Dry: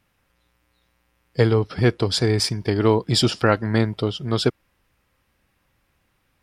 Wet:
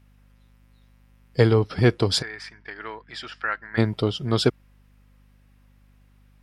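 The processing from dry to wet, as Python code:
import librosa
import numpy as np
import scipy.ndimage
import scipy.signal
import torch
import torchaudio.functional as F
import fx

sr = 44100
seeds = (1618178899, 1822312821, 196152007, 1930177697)

y = fx.bandpass_q(x, sr, hz=1700.0, q=3.2, at=(2.21, 3.77), fade=0.02)
y = fx.add_hum(y, sr, base_hz=50, snr_db=30)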